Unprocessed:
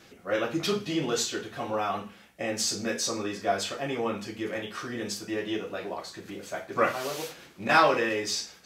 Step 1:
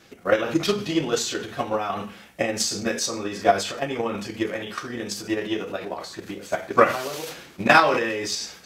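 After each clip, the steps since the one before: transient shaper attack +12 dB, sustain +8 dB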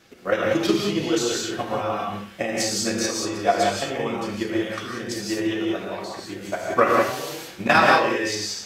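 non-linear reverb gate 0.21 s rising, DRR -1 dB; gain -2.5 dB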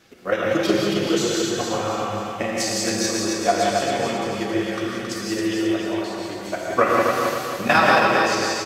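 feedback echo 0.271 s, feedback 46%, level -4 dB

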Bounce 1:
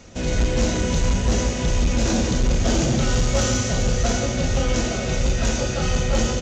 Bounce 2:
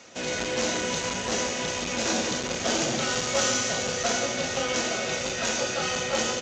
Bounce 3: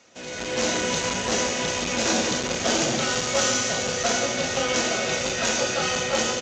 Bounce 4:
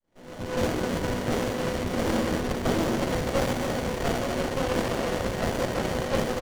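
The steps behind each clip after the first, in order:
weighting filter A
AGC gain up to 11.5 dB; gain -7 dB
opening faded in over 0.53 s; speakerphone echo 0.26 s, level -7 dB; running maximum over 33 samples

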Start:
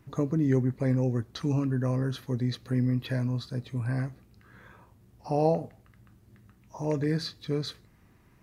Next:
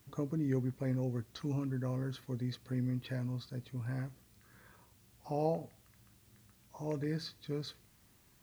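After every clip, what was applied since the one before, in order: requantised 10-bit, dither triangular; gain -8.5 dB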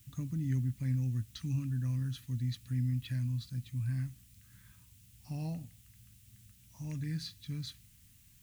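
EQ curve 110 Hz 0 dB, 280 Hz -11 dB, 420 Hz -29 dB, 910 Hz -21 dB, 2800 Hz -3 dB, 4600 Hz -6 dB, 7400 Hz -1 dB; gain +6.5 dB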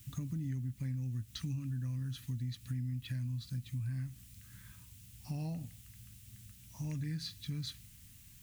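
compressor 6:1, threshold -40 dBFS, peak gain reduction 11.5 dB; gain +4.5 dB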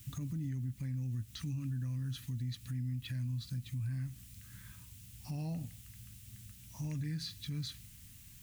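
limiter -33.5 dBFS, peak gain reduction 5.5 dB; gain +2 dB

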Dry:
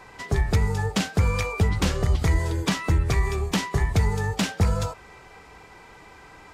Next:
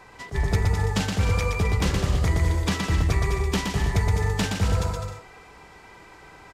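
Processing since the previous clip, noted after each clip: on a send: bouncing-ball echo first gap 0.12 s, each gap 0.7×, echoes 5; on the sum: attack slew limiter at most 320 dB/s; gain -2 dB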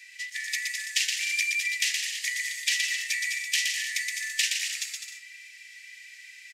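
rippled Chebyshev high-pass 1800 Hz, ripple 3 dB; gain +8 dB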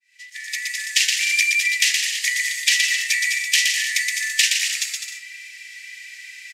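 opening faded in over 1.06 s; gain +8.5 dB

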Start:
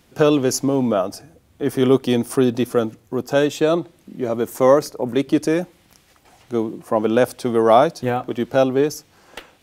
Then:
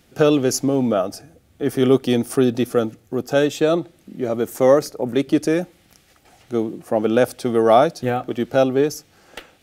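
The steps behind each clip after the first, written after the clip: notch 1000 Hz, Q 5.3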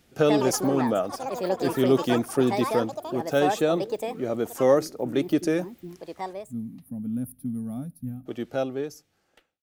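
ending faded out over 1.92 s; spectral gain 6.33–8.26, 290–9400 Hz -29 dB; echoes that change speed 0.155 s, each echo +6 st, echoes 3, each echo -6 dB; gain -5.5 dB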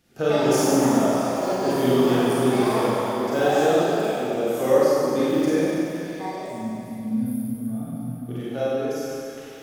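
reverse; upward compressor, threshold -36 dBFS; reverse; delay with a stepping band-pass 0.226 s, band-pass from 1000 Hz, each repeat 0.7 oct, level -6 dB; Schroeder reverb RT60 2.4 s, combs from 32 ms, DRR -8.5 dB; gain -5.5 dB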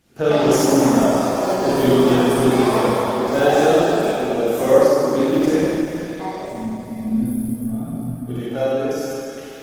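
gain +4.5 dB; Opus 16 kbps 48000 Hz

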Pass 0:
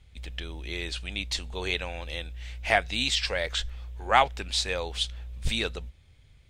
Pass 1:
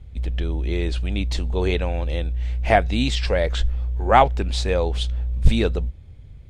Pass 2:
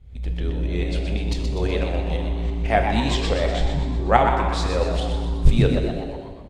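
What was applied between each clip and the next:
tilt shelf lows +9 dB, about 930 Hz; gain +6 dB
tremolo saw up 6 Hz, depth 70%; on a send: frequency-shifting echo 0.124 s, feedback 53%, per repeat +110 Hz, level -7 dB; on the sum: plate-style reverb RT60 1.7 s, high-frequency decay 0.85×, DRR 5 dB

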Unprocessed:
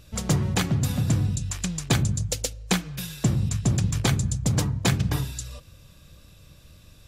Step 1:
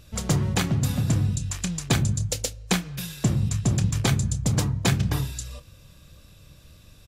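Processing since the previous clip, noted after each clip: doubler 29 ms -13 dB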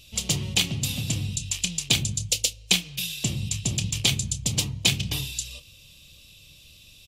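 resonant high shelf 2100 Hz +10.5 dB, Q 3; gain -6.5 dB

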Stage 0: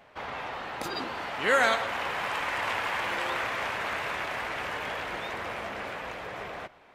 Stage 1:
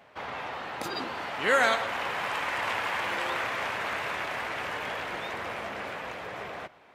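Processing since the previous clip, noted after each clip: HPF 71 Hz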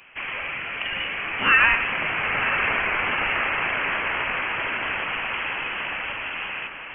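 diffused feedback echo 0.98 s, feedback 50%, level -9 dB; inverted band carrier 3200 Hz; gain +6 dB

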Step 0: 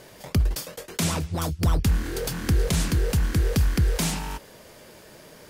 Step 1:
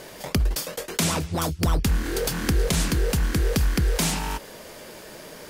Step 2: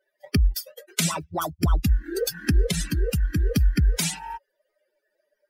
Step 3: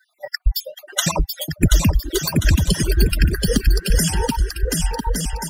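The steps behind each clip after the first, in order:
bell 95 Hz -7 dB 1.3 oct; in parallel at +1 dB: compressor, threshold -32 dBFS, peak gain reduction 11.5 dB
per-bin expansion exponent 3; gain +5.5 dB
random spectral dropouts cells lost 56%; bouncing-ball echo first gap 0.73 s, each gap 0.6×, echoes 5; three-band squash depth 40%; gain +8.5 dB

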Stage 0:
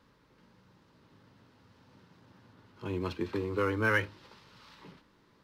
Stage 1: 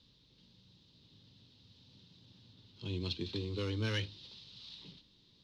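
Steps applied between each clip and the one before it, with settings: EQ curve 130 Hz 0 dB, 1400 Hz -18 dB, 2100 Hz -10 dB, 3700 Hz +13 dB, 14000 Hz -20 dB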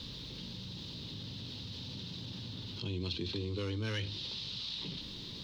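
fast leveller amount 70%; gain -2.5 dB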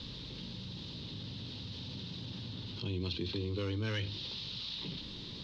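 Bessel low-pass 4800 Hz, order 2; gain +1 dB

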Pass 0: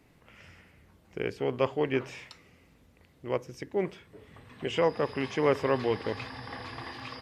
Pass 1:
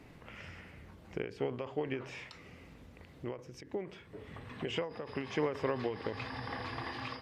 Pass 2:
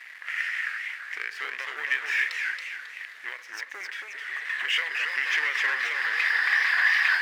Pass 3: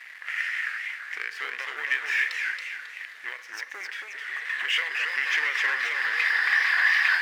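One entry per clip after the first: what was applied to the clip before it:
high shelf 6800 Hz -10 dB; compressor 1.5:1, threshold -55 dBFS, peak gain reduction 12.5 dB; ending taper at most 120 dB/s; gain +7 dB
sample leveller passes 3; resonant high-pass 1800 Hz, resonance Q 6.6; warbling echo 0.269 s, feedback 40%, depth 203 cents, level -4 dB
resonator 160 Hz, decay 0.82 s, harmonics odd, mix 60%; gain +8 dB

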